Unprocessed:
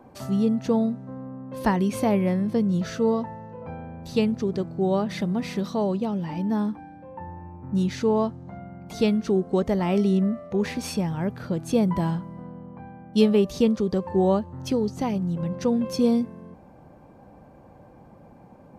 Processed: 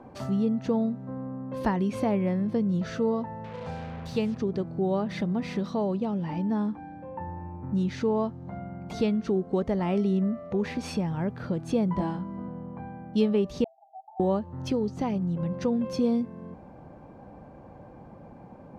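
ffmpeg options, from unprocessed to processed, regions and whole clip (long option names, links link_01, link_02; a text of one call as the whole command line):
ffmpeg -i in.wav -filter_complex "[0:a]asettb=1/sr,asplit=3[link_01][link_02][link_03];[link_01]atrim=end=3.444[link_04];[link_02]atrim=start=3.44:end=4.38,asetpts=PTS-STARTPTS,afade=type=in:duration=0.004:curve=qsin,afade=type=out:start_time=0.936:duration=0.004:curve=qsin,highpass=50,equalizer=frequency=300:width=2.9:gain=-10.5,acrusher=bits=6:mix=0:aa=0.5[link_05];[link_03]atrim=start=4.376[link_06];[link_04][link_05]acrossfade=duration=0.004:curve1=hsin:curve2=qsin[link_07];[link_07][link_06]acrossfade=duration=0.004:curve1=qsin:curve2=hsin,asettb=1/sr,asplit=3[link_08][link_09][link_10];[link_08]atrim=end=11.954[link_11];[link_09]atrim=start=11.95:end=12.48,asetpts=PTS-STARTPTS,afade=type=in:duration=0.004:curve=qsin,afade=type=out:start_time=0.526:duration=0.004:curve=qsin,lowpass=7400,equalizer=frequency=2200:width_type=o:width=2.3:gain=-3,asplit=2[link_12][link_13];[link_13]adelay=21,volume=-3dB[link_14];[link_12][link_14]amix=inputs=2:normalize=0,atrim=end_sample=23373[link_15];[link_10]atrim=start=12.476[link_16];[link_11][link_15]acrossfade=duration=0.004:curve1=hsin:curve2=qsin[link_17];[link_17][link_16]acrossfade=duration=0.004:curve1=qsin:curve2=hsin,asettb=1/sr,asplit=3[link_18][link_19][link_20];[link_18]atrim=end=13.644[link_21];[link_19]atrim=start=13.64:end=14.2,asetpts=PTS-STARTPTS,afade=type=in:duration=0.004:curve=qsin,afade=type=out:start_time=0.556:duration=0.004:curve=qsin,asuperpass=centerf=740:order=20:qfactor=3.4,acompressor=threshold=-40dB:ratio=2:attack=3.2:release=140:knee=1:detection=peak[link_22];[link_20]atrim=start=14.196[link_23];[link_21][link_22]acrossfade=duration=0.004:curve1=hsin:curve2=qsin[link_24];[link_24][link_23]acrossfade=duration=0.004:curve1=qsin:curve2=hsin,aemphasis=mode=reproduction:type=50fm,acompressor=threshold=-35dB:ratio=1.5,volume=2dB" out.wav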